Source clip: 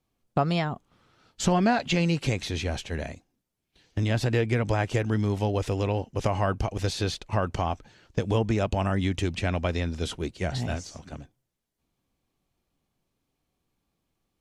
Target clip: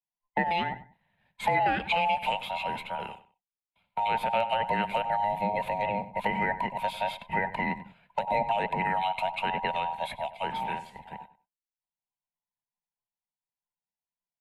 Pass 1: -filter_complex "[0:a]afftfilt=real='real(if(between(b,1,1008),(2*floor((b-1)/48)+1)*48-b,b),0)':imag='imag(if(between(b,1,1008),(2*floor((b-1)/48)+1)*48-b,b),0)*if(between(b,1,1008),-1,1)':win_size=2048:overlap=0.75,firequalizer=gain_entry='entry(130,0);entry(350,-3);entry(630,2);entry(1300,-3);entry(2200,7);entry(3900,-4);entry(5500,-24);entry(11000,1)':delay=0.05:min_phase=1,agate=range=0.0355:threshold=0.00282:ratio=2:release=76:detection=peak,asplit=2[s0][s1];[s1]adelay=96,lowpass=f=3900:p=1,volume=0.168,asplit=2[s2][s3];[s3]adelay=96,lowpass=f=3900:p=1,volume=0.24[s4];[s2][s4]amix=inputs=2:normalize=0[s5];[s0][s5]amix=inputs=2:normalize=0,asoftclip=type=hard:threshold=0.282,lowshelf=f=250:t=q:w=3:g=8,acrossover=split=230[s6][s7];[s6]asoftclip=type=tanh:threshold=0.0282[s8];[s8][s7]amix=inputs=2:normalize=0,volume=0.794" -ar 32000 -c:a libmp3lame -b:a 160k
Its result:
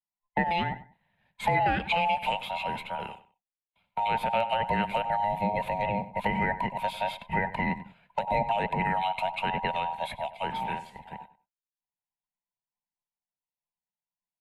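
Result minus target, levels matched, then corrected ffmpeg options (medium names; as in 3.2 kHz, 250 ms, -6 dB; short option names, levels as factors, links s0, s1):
saturation: distortion -5 dB
-filter_complex "[0:a]afftfilt=real='real(if(between(b,1,1008),(2*floor((b-1)/48)+1)*48-b,b),0)':imag='imag(if(between(b,1,1008),(2*floor((b-1)/48)+1)*48-b,b),0)*if(between(b,1,1008),-1,1)':win_size=2048:overlap=0.75,firequalizer=gain_entry='entry(130,0);entry(350,-3);entry(630,2);entry(1300,-3);entry(2200,7);entry(3900,-4);entry(5500,-24);entry(11000,1)':delay=0.05:min_phase=1,agate=range=0.0355:threshold=0.00282:ratio=2:release=76:detection=peak,asplit=2[s0][s1];[s1]adelay=96,lowpass=f=3900:p=1,volume=0.168,asplit=2[s2][s3];[s3]adelay=96,lowpass=f=3900:p=1,volume=0.24[s4];[s2][s4]amix=inputs=2:normalize=0[s5];[s0][s5]amix=inputs=2:normalize=0,asoftclip=type=hard:threshold=0.282,lowshelf=f=250:t=q:w=3:g=8,acrossover=split=230[s6][s7];[s6]asoftclip=type=tanh:threshold=0.00841[s8];[s8][s7]amix=inputs=2:normalize=0,volume=0.794" -ar 32000 -c:a libmp3lame -b:a 160k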